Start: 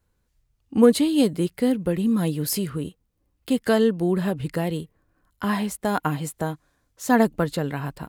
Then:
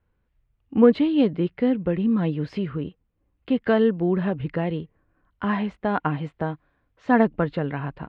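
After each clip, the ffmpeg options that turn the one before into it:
-af "lowpass=f=2.9k:w=0.5412,lowpass=f=2.9k:w=1.3066"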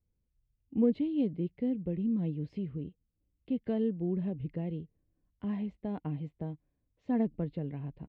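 -af "firequalizer=gain_entry='entry(170,0);entry(1400,-24);entry(2100,-11)':delay=0.05:min_phase=1,volume=-8dB"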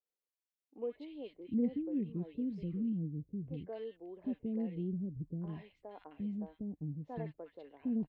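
-filter_complex "[0:a]acrossover=split=410|1400[a][b][c];[c]adelay=60[d];[a]adelay=760[e];[e][b][d]amix=inputs=3:normalize=0,volume=-4dB"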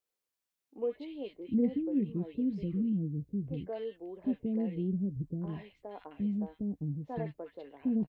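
-filter_complex "[0:a]asplit=2[a][b];[b]adelay=15,volume=-13dB[c];[a][c]amix=inputs=2:normalize=0,volume=5dB"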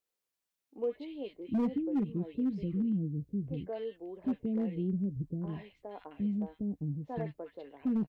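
-af "volume=25.5dB,asoftclip=hard,volume=-25.5dB"

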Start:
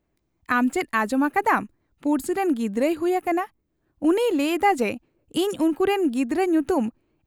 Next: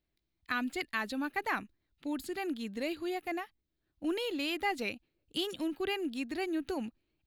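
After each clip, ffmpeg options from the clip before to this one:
-af "equalizer=f=125:t=o:w=1:g=-5,equalizer=f=250:t=o:w=1:g=-4,equalizer=f=500:t=o:w=1:g=-5,equalizer=f=1k:t=o:w=1:g=-7,equalizer=f=4k:t=o:w=1:g=10,equalizer=f=8k:t=o:w=1:g=-8,volume=-8dB"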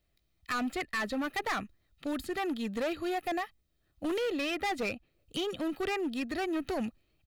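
-filter_complex "[0:a]aecho=1:1:1.6:0.4,acrossover=split=720|2600[a][b][c];[c]acompressor=threshold=-53dB:ratio=6[d];[a][b][d]amix=inputs=3:normalize=0,volume=35dB,asoftclip=hard,volume=-35dB,volume=6.5dB"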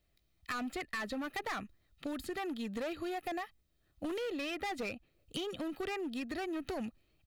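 -af "acompressor=threshold=-36dB:ratio=6"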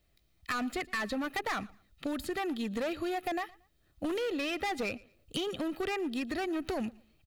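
-af "aecho=1:1:115|230:0.0708|0.0184,volume=4.5dB"

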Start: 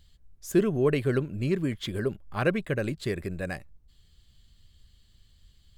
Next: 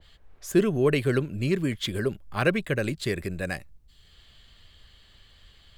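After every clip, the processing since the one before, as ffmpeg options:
-filter_complex "[0:a]acrossover=split=420|3200[a][b][c];[b]acompressor=mode=upward:threshold=-48dB:ratio=2.5[d];[a][d][c]amix=inputs=3:normalize=0,adynamicequalizer=threshold=0.00631:dfrequency=1700:dqfactor=0.7:tfrequency=1700:tqfactor=0.7:attack=5:release=100:ratio=0.375:range=2.5:mode=boostabove:tftype=highshelf,volume=1.5dB"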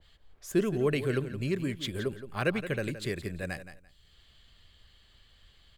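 -af "aecho=1:1:170|340:0.251|0.0477,volume=-5.5dB"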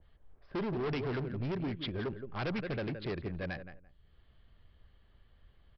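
-af "adynamicsmooth=sensitivity=7:basefreq=1.4k,aresample=11025,volume=32dB,asoftclip=hard,volume=-32dB,aresample=44100"

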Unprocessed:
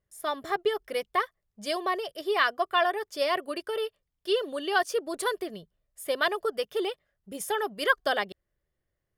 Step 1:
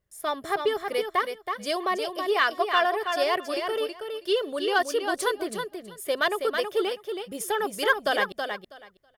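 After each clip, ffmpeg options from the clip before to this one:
-filter_complex "[0:a]asplit=2[a][b];[b]asoftclip=type=tanh:threshold=-25.5dB,volume=-9dB[c];[a][c]amix=inputs=2:normalize=0,aecho=1:1:324|648|972:0.501|0.0802|0.0128"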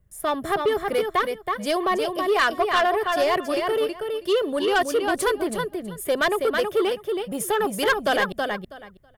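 -filter_complex "[0:a]acrossover=split=210|1500|5700[a][b][c][d];[a]aeval=exprs='0.0119*sin(PI/2*2.82*val(0)/0.0119)':c=same[e];[c]adynamicsmooth=sensitivity=3:basefreq=4.4k[f];[e][b][f][d]amix=inputs=4:normalize=0,asoftclip=type=tanh:threshold=-19.5dB,volume=5.5dB"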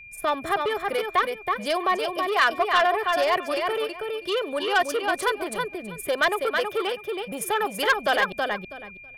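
-filter_complex "[0:a]acrossover=split=530|4900[a][b][c];[a]acompressor=threshold=-36dB:ratio=6[d];[c]tremolo=f=21:d=0.889[e];[d][b][e]amix=inputs=3:normalize=0,aeval=exprs='val(0)+0.00708*sin(2*PI*2400*n/s)':c=same,volume=1dB"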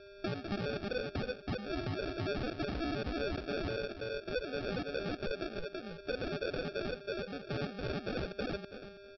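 -af "alimiter=limit=-20.5dB:level=0:latency=1:release=14,aresample=11025,acrusher=samples=11:mix=1:aa=0.000001,aresample=44100,volume=-8.5dB"

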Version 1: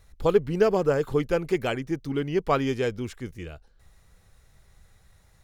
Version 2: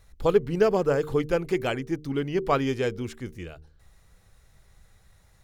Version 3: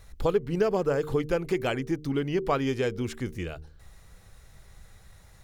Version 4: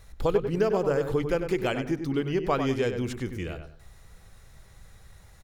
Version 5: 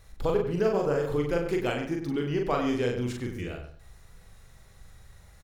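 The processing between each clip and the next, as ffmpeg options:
-af "bandreject=f=76.15:t=h:w=4,bandreject=f=152.3:t=h:w=4,bandreject=f=228.45:t=h:w=4,bandreject=f=304.6:t=h:w=4,bandreject=f=380.75:t=h:w=4,bandreject=f=456.9:t=h:w=4"
-af "acompressor=threshold=-34dB:ratio=2,volume=5.5dB"
-filter_complex "[0:a]asplit=2[a][b];[b]adelay=97,lowpass=f=2.7k:p=1,volume=-7.5dB,asplit=2[c][d];[d]adelay=97,lowpass=f=2.7k:p=1,volume=0.28,asplit=2[e][f];[f]adelay=97,lowpass=f=2.7k:p=1,volume=0.28[g];[a][c][e][g]amix=inputs=4:normalize=0"
-filter_complex "[0:a]asplit=2[a][b];[b]adelay=41,volume=-3dB[c];[a][c]amix=inputs=2:normalize=0,volume=-3dB"

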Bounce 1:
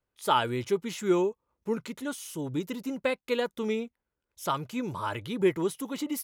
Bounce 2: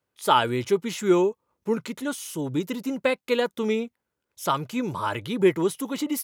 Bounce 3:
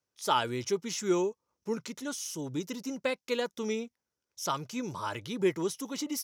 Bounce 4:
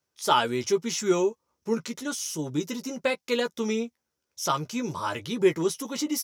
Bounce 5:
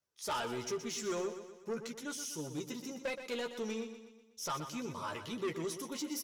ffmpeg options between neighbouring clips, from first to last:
-af "highpass=95,volume=5dB"
-af "equalizer=f=5.7k:w=2.2:g=14,volume=-8dB"
-filter_complex "[0:a]asplit=2[a][b];[b]adelay=13,volume=-7dB[c];[a][c]amix=inputs=2:normalize=0,volume=4.5dB"
-filter_complex "[0:a]flanger=delay=1.4:depth=2:regen=62:speed=1.6:shape=triangular,asoftclip=type=tanh:threshold=-28dB,asplit=2[a][b];[b]aecho=0:1:123|246|369|492|615:0.316|0.158|0.0791|0.0395|0.0198[c];[a][c]amix=inputs=2:normalize=0,volume=-4dB"

